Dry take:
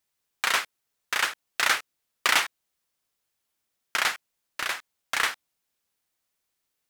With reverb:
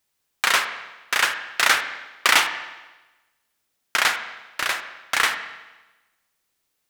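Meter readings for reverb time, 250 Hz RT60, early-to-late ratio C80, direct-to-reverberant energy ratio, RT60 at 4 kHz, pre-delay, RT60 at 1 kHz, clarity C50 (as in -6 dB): 1.1 s, 1.1 s, 11.0 dB, 8.0 dB, 1.1 s, 31 ms, 1.1 s, 9.0 dB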